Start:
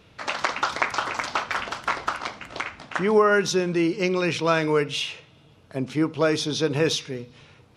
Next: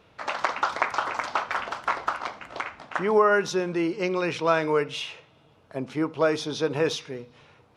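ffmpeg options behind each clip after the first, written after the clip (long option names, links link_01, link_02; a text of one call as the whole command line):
ffmpeg -i in.wav -af "equalizer=frequency=840:width=0.5:gain=8.5,volume=-7.5dB" out.wav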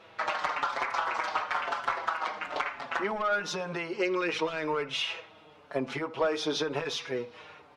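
ffmpeg -i in.wav -filter_complex "[0:a]asplit=2[link_01][link_02];[link_02]highpass=frequency=720:poles=1,volume=17dB,asoftclip=type=tanh:threshold=-5.5dB[link_03];[link_01][link_03]amix=inputs=2:normalize=0,lowpass=frequency=2900:poles=1,volume=-6dB,acompressor=threshold=-24dB:ratio=6,asplit=2[link_04][link_05];[link_05]adelay=5.6,afreqshift=-0.99[link_06];[link_04][link_06]amix=inputs=2:normalize=1" out.wav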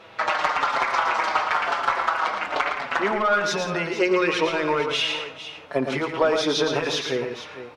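ffmpeg -i in.wav -af "aecho=1:1:113|170|455:0.473|0.188|0.224,volume=7dB" out.wav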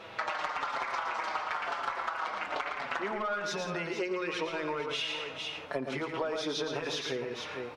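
ffmpeg -i in.wav -af "acompressor=threshold=-33dB:ratio=4" out.wav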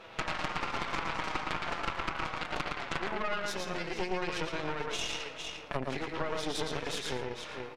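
ffmpeg -i in.wav -af "aeval=exprs='0.126*(cos(1*acos(clip(val(0)/0.126,-1,1)))-cos(1*PI/2))+0.0631*(cos(4*acos(clip(val(0)/0.126,-1,1)))-cos(4*PI/2))':channel_layout=same,aecho=1:1:113:0.211,volume=-4dB" out.wav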